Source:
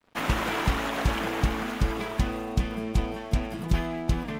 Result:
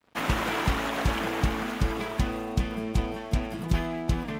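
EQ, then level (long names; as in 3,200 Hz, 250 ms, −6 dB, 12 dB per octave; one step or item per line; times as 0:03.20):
high-pass filter 43 Hz
0.0 dB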